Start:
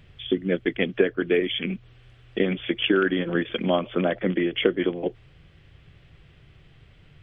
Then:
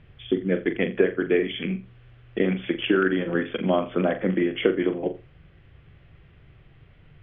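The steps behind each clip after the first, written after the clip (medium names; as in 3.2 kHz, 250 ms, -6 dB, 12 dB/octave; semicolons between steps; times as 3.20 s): low-pass 2.4 kHz 12 dB/octave; on a send: flutter echo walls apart 7.3 m, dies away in 0.28 s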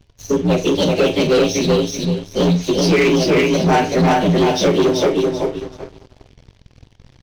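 frequency axis rescaled in octaves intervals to 124%; feedback delay 383 ms, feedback 24%, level -3 dB; waveshaping leveller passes 3; trim +2.5 dB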